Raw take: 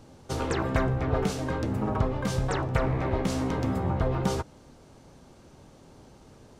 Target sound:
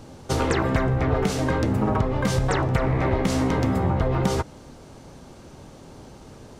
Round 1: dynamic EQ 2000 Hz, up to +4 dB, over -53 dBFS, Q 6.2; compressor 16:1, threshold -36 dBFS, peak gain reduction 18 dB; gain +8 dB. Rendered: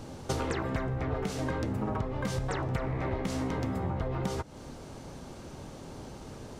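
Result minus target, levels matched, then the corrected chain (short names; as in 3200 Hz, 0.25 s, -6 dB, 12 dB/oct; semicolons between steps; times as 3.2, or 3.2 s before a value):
compressor: peak gain reduction +10.5 dB
dynamic EQ 2000 Hz, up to +4 dB, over -53 dBFS, Q 6.2; compressor 16:1, threshold -25 dBFS, peak gain reduction 7.5 dB; gain +8 dB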